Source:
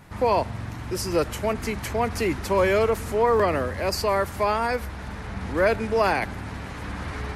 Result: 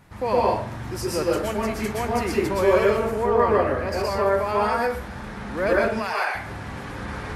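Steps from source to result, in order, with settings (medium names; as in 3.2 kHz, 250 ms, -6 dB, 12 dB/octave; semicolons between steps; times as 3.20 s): 2.93–4.49 s: treble shelf 4 kHz -8.5 dB; 5.85–6.35 s: high-pass 920 Hz 12 dB/octave; plate-style reverb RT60 0.5 s, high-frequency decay 0.6×, pre-delay 105 ms, DRR -4.5 dB; trim -4.5 dB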